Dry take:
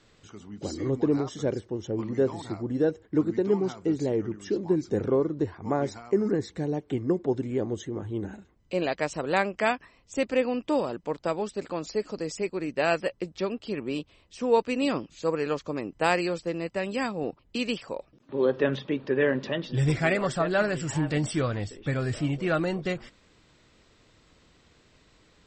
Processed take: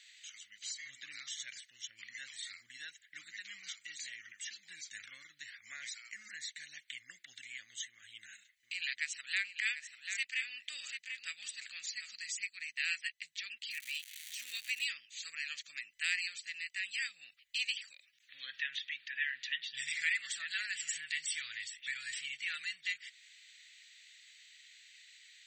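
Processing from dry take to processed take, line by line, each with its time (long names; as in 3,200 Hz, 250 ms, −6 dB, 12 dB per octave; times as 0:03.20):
0:07.89–0:12.12: single-tap delay 741 ms −10.5 dB
0:13.70–0:14.84: surface crackle 390 per second −36 dBFS
whole clip: elliptic high-pass filter 1,900 Hz, stop band 50 dB; downward compressor 1.5 to 1, threshold −54 dBFS; notch filter 5,200 Hz, Q 5.8; level +8 dB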